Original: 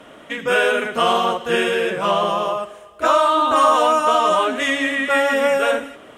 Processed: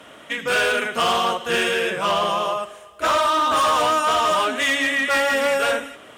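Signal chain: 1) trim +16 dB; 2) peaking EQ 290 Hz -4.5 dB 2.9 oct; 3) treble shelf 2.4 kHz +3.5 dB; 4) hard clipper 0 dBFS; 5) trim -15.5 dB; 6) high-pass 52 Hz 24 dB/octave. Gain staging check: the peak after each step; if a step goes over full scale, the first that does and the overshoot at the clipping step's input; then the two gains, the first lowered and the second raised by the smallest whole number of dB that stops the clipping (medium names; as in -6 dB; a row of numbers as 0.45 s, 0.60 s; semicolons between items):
+11.0 dBFS, +9.0 dBFS, +10.0 dBFS, 0.0 dBFS, -15.5 dBFS, -12.0 dBFS; step 1, 10.0 dB; step 1 +6 dB, step 5 -5.5 dB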